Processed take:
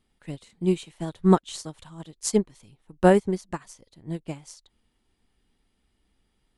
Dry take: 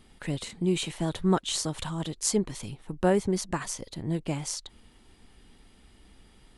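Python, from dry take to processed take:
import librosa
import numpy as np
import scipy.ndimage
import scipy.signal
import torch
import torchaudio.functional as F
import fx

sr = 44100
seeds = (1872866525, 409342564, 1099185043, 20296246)

y = fx.upward_expand(x, sr, threshold_db=-35.0, expansion=2.5)
y = y * librosa.db_to_amplitude(8.0)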